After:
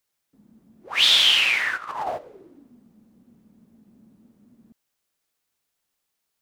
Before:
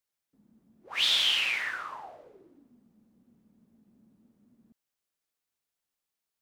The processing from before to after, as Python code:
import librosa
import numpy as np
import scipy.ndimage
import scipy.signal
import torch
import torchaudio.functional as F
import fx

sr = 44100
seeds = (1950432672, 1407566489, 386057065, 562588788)

y = fx.over_compress(x, sr, threshold_db=-45.0, ratio=-0.5, at=(1.76, 2.17), fade=0.02)
y = y * 10.0 ** (8.5 / 20.0)